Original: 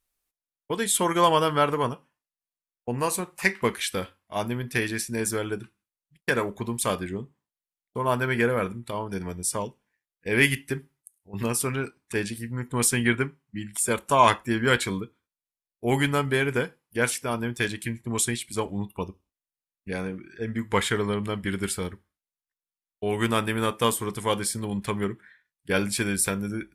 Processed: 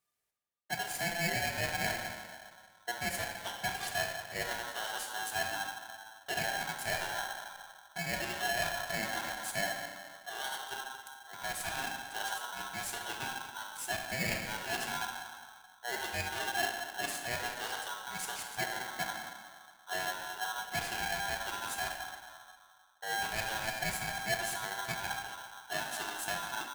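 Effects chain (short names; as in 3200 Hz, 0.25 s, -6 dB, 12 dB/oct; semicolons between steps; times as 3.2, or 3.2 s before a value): low shelf 180 Hz -7 dB; echo 0.222 s -23.5 dB; reverse; compressor 12:1, threshold -33 dBFS, peak gain reduction 20.5 dB; reverse; graphic EQ 125/500/1000/8000 Hz -3/+10/+6/+3 dB; shoebox room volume 2100 m³, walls mixed, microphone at 2.1 m; polarity switched at an audio rate 1200 Hz; gain -8.5 dB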